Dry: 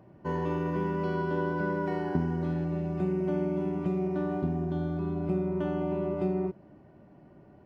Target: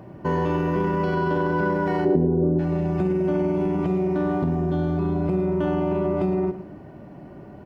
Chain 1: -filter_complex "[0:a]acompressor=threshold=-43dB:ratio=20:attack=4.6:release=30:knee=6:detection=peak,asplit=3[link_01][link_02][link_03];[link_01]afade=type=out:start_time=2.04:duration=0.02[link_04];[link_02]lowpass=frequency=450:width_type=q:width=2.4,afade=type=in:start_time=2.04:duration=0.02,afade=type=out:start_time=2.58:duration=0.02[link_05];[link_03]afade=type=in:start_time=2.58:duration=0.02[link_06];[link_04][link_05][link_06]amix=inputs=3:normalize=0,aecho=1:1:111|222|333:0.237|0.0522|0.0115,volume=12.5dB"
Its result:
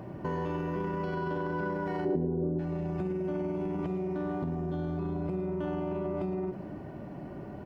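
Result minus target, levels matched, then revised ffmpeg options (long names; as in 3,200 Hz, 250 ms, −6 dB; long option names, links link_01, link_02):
downward compressor: peak gain reduction +10.5 dB
-filter_complex "[0:a]acompressor=threshold=-32dB:ratio=20:attack=4.6:release=30:knee=6:detection=peak,asplit=3[link_01][link_02][link_03];[link_01]afade=type=out:start_time=2.04:duration=0.02[link_04];[link_02]lowpass=frequency=450:width_type=q:width=2.4,afade=type=in:start_time=2.04:duration=0.02,afade=type=out:start_time=2.58:duration=0.02[link_05];[link_03]afade=type=in:start_time=2.58:duration=0.02[link_06];[link_04][link_05][link_06]amix=inputs=3:normalize=0,aecho=1:1:111|222|333:0.237|0.0522|0.0115,volume=12.5dB"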